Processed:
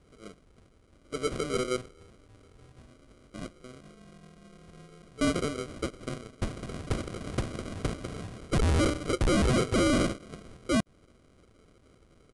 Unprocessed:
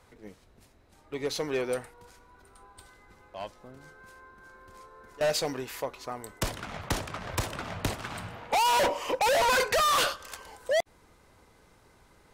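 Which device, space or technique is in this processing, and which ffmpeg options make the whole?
crushed at another speed: -af "asetrate=88200,aresample=44100,acrusher=samples=25:mix=1:aa=0.000001,asetrate=22050,aresample=44100"

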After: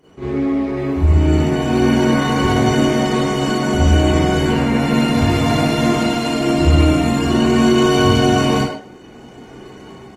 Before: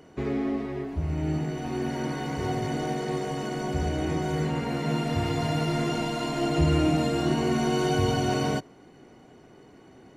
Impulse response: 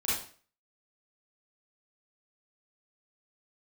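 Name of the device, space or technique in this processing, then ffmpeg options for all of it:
speakerphone in a meeting room: -filter_complex "[1:a]atrim=start_sample=2205[a];[0:a][a]afir=irnorm=-1:irlink=0,asplit=2[b][c];[c]adelay=100,highpass=300,lowpass=3.4k,asoftclip=type=hard:threshold=-14dB,volume=-8dB[d];[b][d]amix=inputs=2:normalize=0,dynaudnorm=f=330:g=5:m=12dB,volume=-1dB" -ar 48000 -c:a libopus -b:a 20k

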